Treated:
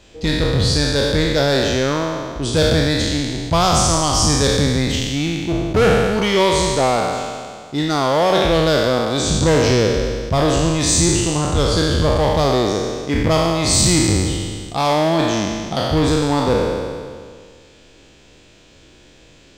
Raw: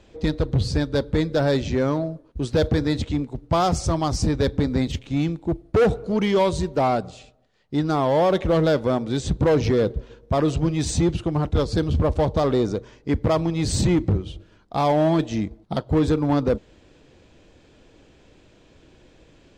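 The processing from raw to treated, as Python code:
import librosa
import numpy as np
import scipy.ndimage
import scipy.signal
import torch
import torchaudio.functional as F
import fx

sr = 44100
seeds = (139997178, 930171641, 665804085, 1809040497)

y = fx.spec_trails(x, sr, decay_s=1.95)
y = fx.high_shelf(y, sr, hz=2100.0, db=10.5)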